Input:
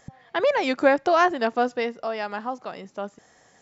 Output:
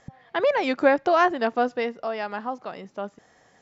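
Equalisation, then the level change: distance through air 82 m; 0.0 dB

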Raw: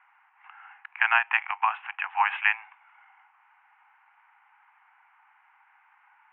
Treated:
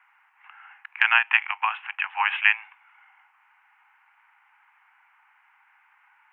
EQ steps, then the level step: dynamic bell 3.2 kHz, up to +5 dB, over -41 dBFS, Q 2; tilt shelf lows -8 dB, about 820 Hz; -3.0 dB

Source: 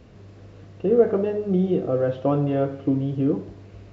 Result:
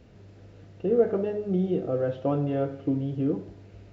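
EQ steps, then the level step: band-stop 1.1 kHz, Q 8.5; -4.5 dB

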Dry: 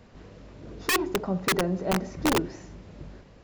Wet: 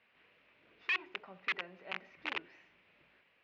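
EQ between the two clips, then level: band-pass filter 2.5 kHz, Q 2.9; distance through air 240 m; +1.0 dB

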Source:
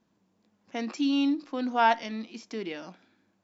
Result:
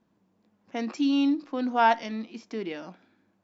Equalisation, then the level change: treble shelf 3.2 kHz -9 dB; dynamic bell 6.3 kHz, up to +5 dB, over -53 dBFS, Q 0.93; +2.0 dB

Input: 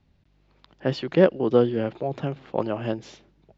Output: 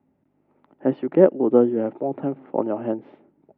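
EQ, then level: cabinet simulation 260–2700 Hz, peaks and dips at 270 Hz +8 dB, 390 Hz +3 dB, 600 Hz +5 dB, 860 Hz +9 dB, 1.3 kHz +6 dB, 2 kHz +4 dB; tilt shelf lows +9.5 dB, about 650 Hz; -3.5 dB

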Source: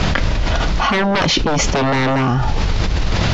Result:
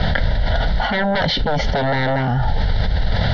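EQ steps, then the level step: low-pass 4.3 kHz 24 dB/octave; peaking EQ 340 Hz +6 dB 0.79 oct; static phaser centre 1.7 kHz, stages 8; 0.0 dB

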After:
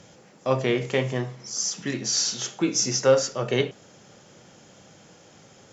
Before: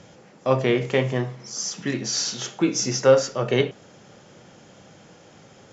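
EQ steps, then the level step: treble shelf 6.1 kHz +10 dB; -3.0 dB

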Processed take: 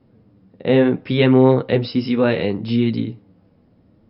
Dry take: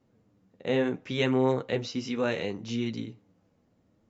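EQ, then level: brick-wall FIR low-pass 5.4 kHz; bass shelf 490 Hz +7 dB; +7.5 dB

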